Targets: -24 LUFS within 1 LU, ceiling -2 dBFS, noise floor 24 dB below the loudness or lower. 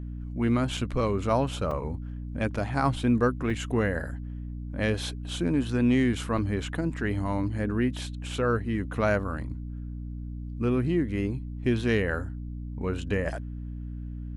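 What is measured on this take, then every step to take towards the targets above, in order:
dropouts 4; longest dropout 3.6 ms; hum 60 Hz; highest harmonic 300 Hz; hum level -33 dBFS; loudness -29.0 LUFS; peak level -11.5 dBFS; loudness target -24.0 LUFS
-> interpolate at 0.77/1.71/3.50/6.38 s, 3.6 ms; hum notches 60/120/180/240/300 Hz; trim +5 dB

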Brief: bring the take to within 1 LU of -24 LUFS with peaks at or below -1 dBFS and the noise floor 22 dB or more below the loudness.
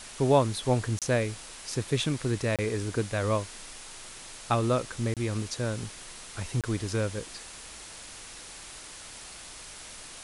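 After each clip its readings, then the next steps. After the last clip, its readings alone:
dropouts 4; longest dropout 27 ms; noise floor -45 dBFS; noise floor target -52 dBFS; loudness -29.5 LUFS; peak level -10.0 dBFS; loudness target -24.0 LUFS
-> interpolate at 0.99/2.56/5.14/6.61 s, 27 ms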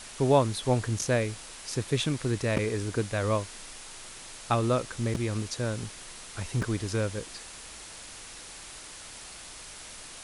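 dropouts 0; noise floor -45 dBFS; noise floor target -52 dBFS
-> noise print and reduce 7 dB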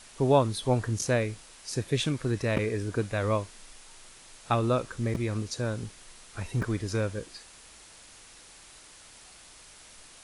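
noise floor -52 dBFS; loudness -29.5 LUFS; peak level -10.0 dBFS; loudness target -24.0 LUFS
-> trim +5.5 dB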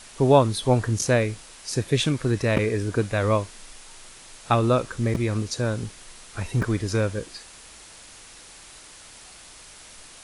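loudness -24.0 LUFS; peak level -4.5 dBFS; noise floor -47 dBFS

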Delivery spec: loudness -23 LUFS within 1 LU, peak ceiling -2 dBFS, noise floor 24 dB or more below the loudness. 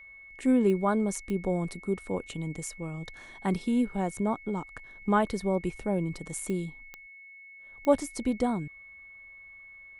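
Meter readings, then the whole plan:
clicks found 5; steady tone 2.2 kHz; tone level -47 dBFS; loudness -30.0 LUFS; peak level -10.0 dBFS; loudness target -23.0 LUFS
-> de-click; band-stop 2.2 kHz, Q 30; trim +7 dB

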